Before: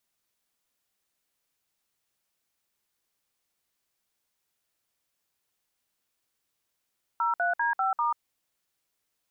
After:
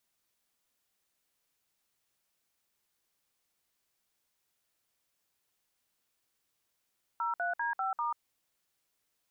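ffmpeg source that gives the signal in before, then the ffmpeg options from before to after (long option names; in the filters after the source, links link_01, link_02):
-f lavfi -i "aevalsrc='0.0501*clip(min(mod(t,0.197),0.139-mod(t,0.197))/0.002,0,1)*(eq(floor(t/0.197),0)*(sin(2*PI*941*mod(t,0.197))+sin(2*PI*1336*mod(t,0.197)))+eq(floor(t/0.197),1)*(sin(2*PI*697*mod(t,0.197))+sin(2*PI*1477*mod(t,0.197)))+eq(floor(t/0.197),2)*(sin(2*PI*941*mod(t,0.197))+sin(2*PI*1633*mod(t,0.197)))+eq(floor(t/0.197),3)*(sin(2*PI*770*mod(t,0.197))+sin(2*PI*1336*mod(t,0.197)))+eq(floor(t/0.197),4)*(sin(2*PI*941*mod(t,0.197))+sin(2*PI*1209*mod(t,0.197))))':duration=0.985:sample_rate=44100"
-af "alimiter=level_in=2.5dB:limit=-24dB:level=0:latency=1:release=24,volume=-2.5dB"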